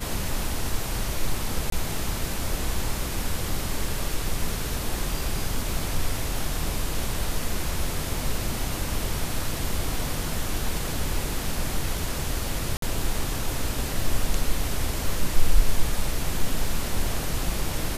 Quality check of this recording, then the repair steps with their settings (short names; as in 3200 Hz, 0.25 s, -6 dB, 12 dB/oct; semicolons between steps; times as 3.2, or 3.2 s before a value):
1.7–1.72 gap 23 ms
12.77–12.82 gap 53 ms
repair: interpolate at 1.7, 23 ms; interpolate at 12.77, 53 ms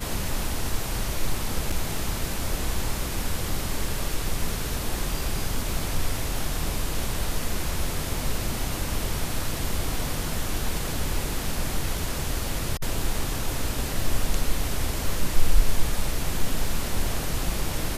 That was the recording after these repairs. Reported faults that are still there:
none